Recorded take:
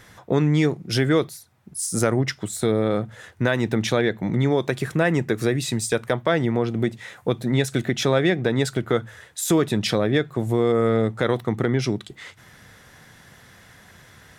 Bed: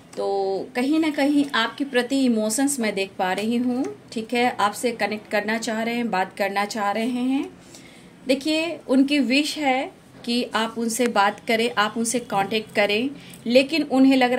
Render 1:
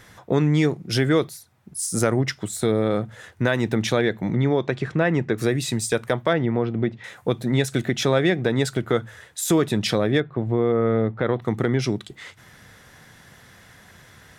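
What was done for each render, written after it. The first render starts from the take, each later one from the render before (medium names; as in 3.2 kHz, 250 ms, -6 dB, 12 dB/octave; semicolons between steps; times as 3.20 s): 4.33–5.38 s: distance through air 130 m; 6.33–7.04 s: distance through air 240 m; 10.20–11.42 s: distance through air 360 m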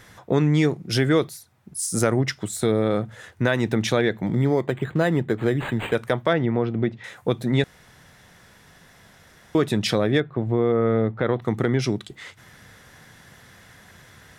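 4.26–5.95 s: decimation joined by straight lines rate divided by 8×; 7.64–9.55 s: room tone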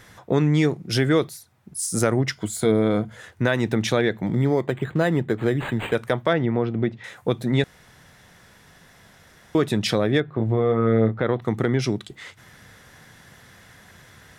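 2.34–3.17 s: rippled EQ curve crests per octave 1.8, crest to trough 7 dB; 10.25–11.19 s: doubling 27 ms -6 dB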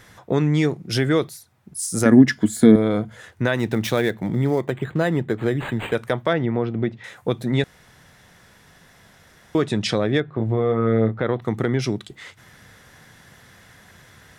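2.05–2.76 s: small resonant body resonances 250/1700 Hz, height 18 dB, ringing for 55 ms; 3.56–4.70 s: dead-time distortion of 0.053 ms; 9.63–10.44 s: low-pass 9 kHz 24 dB/octave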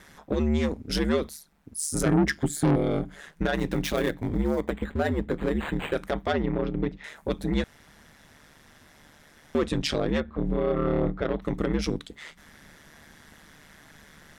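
saturation -14.5 dBFS, distortion -9 dB; ring modulator 75 Hz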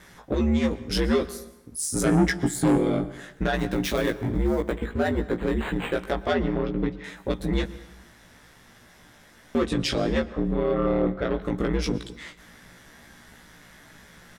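doubling 17 ms -3 dB; plate-style reverb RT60 0.98 s, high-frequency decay 0.8×, pre-delay 105 ms, DRR 16 dB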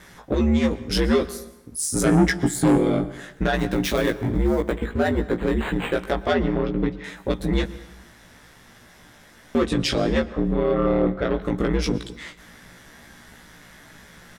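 trim +3 dB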